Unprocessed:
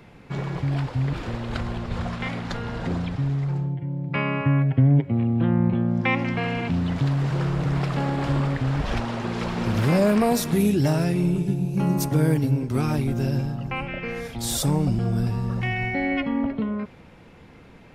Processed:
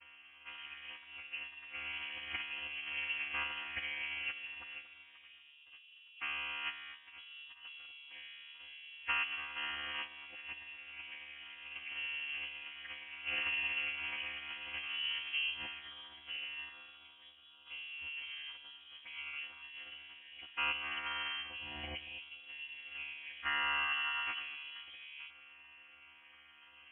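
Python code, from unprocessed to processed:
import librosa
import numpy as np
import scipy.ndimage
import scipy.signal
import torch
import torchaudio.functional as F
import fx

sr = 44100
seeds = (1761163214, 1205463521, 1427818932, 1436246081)

p1 = fx.chord_vocoder(x, sr, chord='bare fifth', root=50)
p2 = fx.over_compress(p1, sr, threshold_db=-33.0, ratio=-1.0)
p3 = p1 + F.gain(torch.from_numpy(p2), 2.0).numpy()
p4 = fx.stretch_vocoder(p3, sr, factor=1.5)
p5 = fx.ladder_highpass(p4, sr, hz=700.0, resonance_pct=30)
p6 = p5 + fx.echo_single(p5, sr, ms=234, db=-15.0, dry=0)
y = fx.freq_invert(p6, sr, carrier_hz=3600)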